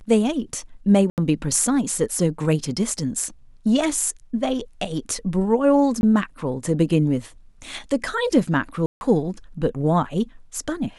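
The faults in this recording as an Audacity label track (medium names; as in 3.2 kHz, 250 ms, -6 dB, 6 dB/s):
1.100000	1.180000	dropout 78 ms
6.010000	6.030000	dropout 21 ms
8.860000	9.010000	dropout 151 ms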